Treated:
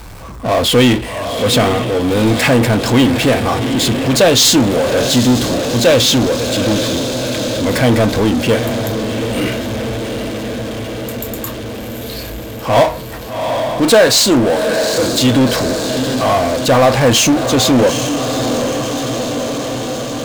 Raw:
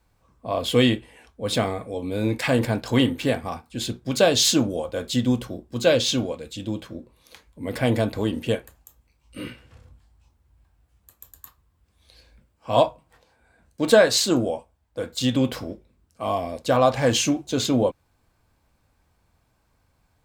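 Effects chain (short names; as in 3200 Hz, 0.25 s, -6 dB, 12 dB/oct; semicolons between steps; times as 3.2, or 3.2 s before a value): diffused feedback echo 0.787 s, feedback 60%, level -13 dB; power-law curve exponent 0.5; gain +2.5 dB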